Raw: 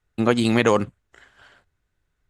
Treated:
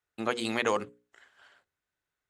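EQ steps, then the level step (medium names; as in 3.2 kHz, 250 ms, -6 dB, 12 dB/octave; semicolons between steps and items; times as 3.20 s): high-pass 98 Hz 6 dB/octave; bass shelf 260 Hz -12 dB; hum notches 60/120/180/240/300/360/420/480/540 Hz; -6.5 dB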